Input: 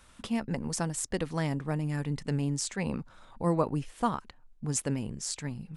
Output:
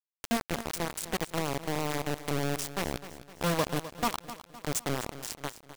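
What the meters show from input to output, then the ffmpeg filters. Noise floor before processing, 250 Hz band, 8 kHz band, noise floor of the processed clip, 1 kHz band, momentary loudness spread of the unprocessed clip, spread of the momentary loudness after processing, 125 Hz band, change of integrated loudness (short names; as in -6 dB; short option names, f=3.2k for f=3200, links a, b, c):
-58 dBFS, -3.0 dB, -1.5 dB, under -85 dBFS, +2.0 dB, 5 LU, 8 LU, -5.0 dB, -0.5 dB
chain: -filter_complex "[0:a]asplit=2[a][b];[b]acompressor=threshold=-37dB:ratio=6,volume=1dB[c];[a][c]amix=inputs=2:normalize=0,acrusher=bits=3:mix=0:aa=0.000001,aecho=1:1:256|512|768|1024|1280:0.211|0.101|0.0487|0.0234|0.0112,volume=-4dB"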